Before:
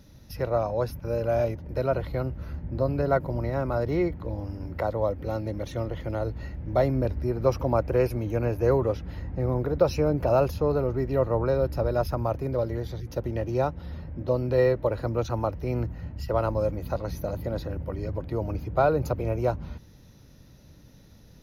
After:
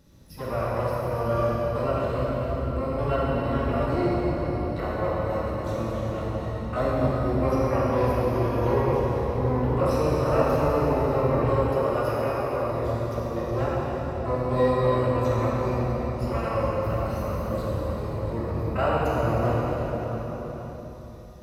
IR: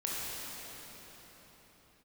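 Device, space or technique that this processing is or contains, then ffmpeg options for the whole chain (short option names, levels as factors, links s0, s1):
shimmer-style reverb: -filter_complex "[0:a]asettb=1/sr,asplit=3[s0][s1][s2];[s0]atrim=end=11.504[s3];[s1]atrim=start=11.5:end=12.64,asetpts=PTS-STARTPTS,afade=t=in:d=0.004:c=qsin,afade=t=out:st=1.136:d=0.004:c=qsin,highpass=f=270:w=0.5412,highpass=f=270:w=1.3066[s4];[s2]atrim=start=12.636[s5];[s3][s4]acrossfade=d=0.004:c1=hsin:c2=qsin[s6];[s6][s5]acrossfade=d=0.004:c1=qsin:c2=hsin,asplit=2[s7][s8];[s8]asetrate=88200,aresample=44100,atempo=0.5,volume=0.447[s9];[s7][s9]amix=inputs=2:normalize=0[s10];[1:a]atrim=start_sample=2205[s11];[s10][s11]afir=irnorm=-1:irlink=0,volume=0.531"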